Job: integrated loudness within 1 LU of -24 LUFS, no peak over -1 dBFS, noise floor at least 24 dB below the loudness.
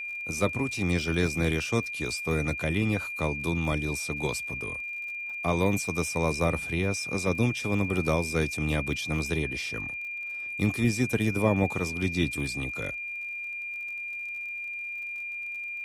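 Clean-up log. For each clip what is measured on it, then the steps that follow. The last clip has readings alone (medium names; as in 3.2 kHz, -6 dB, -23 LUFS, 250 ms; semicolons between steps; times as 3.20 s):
tick rate 49 per s; steady tone 2.4 kHz; tone level -33 dBFS; loudness -29.0 LUFS; peak level -9.5 dBFS; loudness target -24.0 LUFS
-> de-click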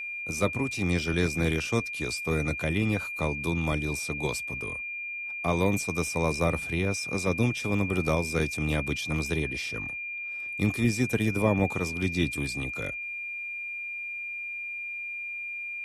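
tick rate 0 per s; steady tone 2.4 kHz; tone level -33 dBFS
-> band-stop 2.4 kHz, Q 30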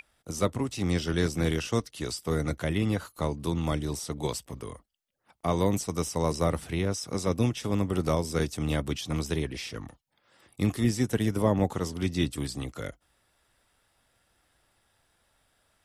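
steady tone not found; loudness -29.5 LUFS; peak level -10.0 dBFS; loudness target -24.0 LUFS
-> trim +5.5 dB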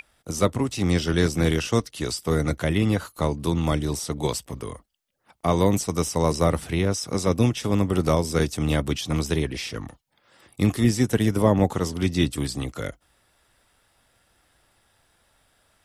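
loudness -24.0 LUFS; peak level -4.5 dBFS; noise floor -66 dBFS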